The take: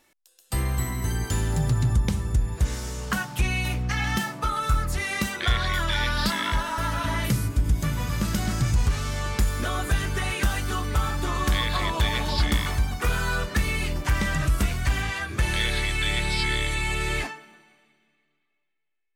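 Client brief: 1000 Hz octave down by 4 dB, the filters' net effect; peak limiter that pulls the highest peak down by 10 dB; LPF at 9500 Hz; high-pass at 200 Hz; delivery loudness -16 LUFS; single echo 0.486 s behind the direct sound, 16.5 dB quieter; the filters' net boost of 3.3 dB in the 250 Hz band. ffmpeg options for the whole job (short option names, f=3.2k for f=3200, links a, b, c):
-af "highpass=200,lowpass=9.5k,equalizer=f=250:t=o:g=8,equalizer=f=1k:t=o:g=-5.5,alimiter=limit=-21dB:level=0:latency=1,aecho=1:1:486:0.15,volume=14.5dB"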